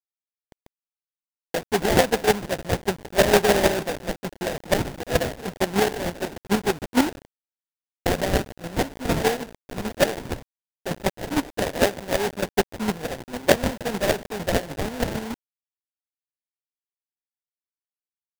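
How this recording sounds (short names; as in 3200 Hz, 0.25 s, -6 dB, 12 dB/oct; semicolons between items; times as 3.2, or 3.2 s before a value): a quantiser's noise floor 6-bit, dither none; chopped level 6.6 Hz, depth 60%, duty 25%; aliases and images of a low sample rate 1200 Hz, jitter 20%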